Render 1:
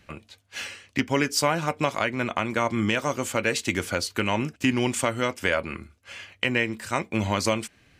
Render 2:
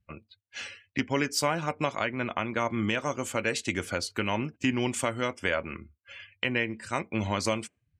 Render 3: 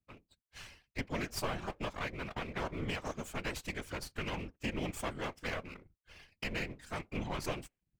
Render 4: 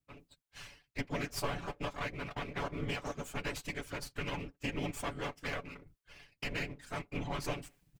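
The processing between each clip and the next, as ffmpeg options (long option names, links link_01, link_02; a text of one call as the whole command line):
ffmpeg -i in.wav -af "afftdn=noise_reduction=29:noise_floor=-45,volume=-4dB" out.wav
ffmpeg -i in.wav -af "aeval=exprs='max(val(0),0)':channel_layout=same,afftfilt=real='hypot(re,im)*cos(2*PI*random(0))':imag='hypot(re,im)*sin(2*PI*random(1))':win_size=512:overlap=0.75,volume=-1dB" out.wav
ffmpeg -i in.wav -af "aecho=1:1:7:0.55,areverse,acompressor=mode=upward:threshold=-50dB:ratio=2.5,areverse,volume=-1dB" out.wav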